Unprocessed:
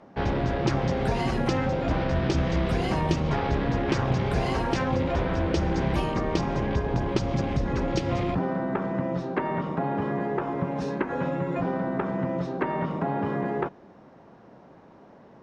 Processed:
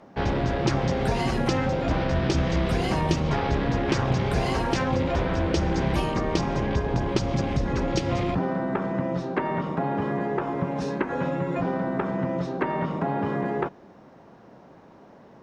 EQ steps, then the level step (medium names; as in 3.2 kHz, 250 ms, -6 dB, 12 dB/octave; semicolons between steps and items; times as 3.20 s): treble shelf 4.7 kHz +5.5 dB; +1.0 dB